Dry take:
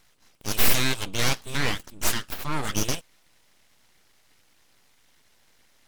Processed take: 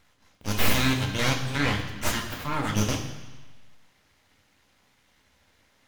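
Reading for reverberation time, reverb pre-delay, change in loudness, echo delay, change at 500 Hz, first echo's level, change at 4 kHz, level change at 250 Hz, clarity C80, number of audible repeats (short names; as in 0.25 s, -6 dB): 1.3 s, 3 ms, -0.5 dB, none, +1.0 dB, none, -1.5 dB, +4.5 dB, 9.5 dB, none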